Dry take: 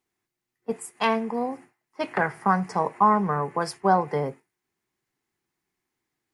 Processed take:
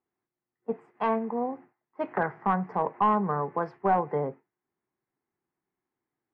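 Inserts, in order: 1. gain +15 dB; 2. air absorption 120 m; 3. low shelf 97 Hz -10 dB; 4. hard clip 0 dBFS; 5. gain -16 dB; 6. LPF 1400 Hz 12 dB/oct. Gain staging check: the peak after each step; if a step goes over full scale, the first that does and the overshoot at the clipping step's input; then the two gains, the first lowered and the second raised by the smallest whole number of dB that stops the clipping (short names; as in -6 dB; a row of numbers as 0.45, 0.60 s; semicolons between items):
+7.5, +7.0, +7.0, 0.0, -16.0, -15.5 dBFS; step 1, 7.0 dB; step 1 +8 dB, step 5 -9 dB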